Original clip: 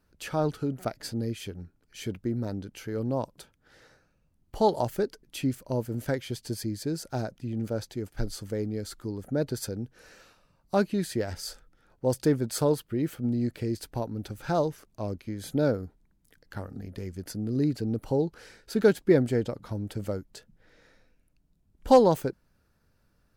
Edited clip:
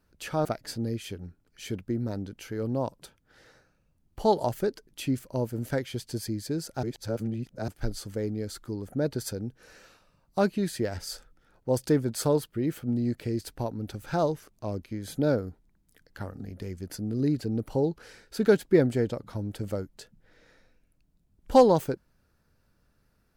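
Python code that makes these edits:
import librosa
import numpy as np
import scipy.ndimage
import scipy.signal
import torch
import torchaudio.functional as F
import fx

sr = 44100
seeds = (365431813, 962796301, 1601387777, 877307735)

y = fx.edit(x, sr, fx.cut(start_s=0.45, length_s=0.36),
    fx.reverse_span(start_s=7.19, length_s=0.85), tone=tone)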